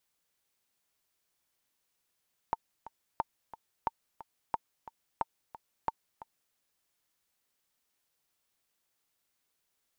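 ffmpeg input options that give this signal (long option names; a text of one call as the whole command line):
ffmpeg -f lavfi -i "aevalsrc='pow(10,(-16-16*gte(mod(t,2*60/179),60/179))/20)*sin(2*PI*905*mod(t,60/179))*exp(-6.91*mod(t,60/179)/0.03)':duration=4.02:sample_rate=44100" out.wav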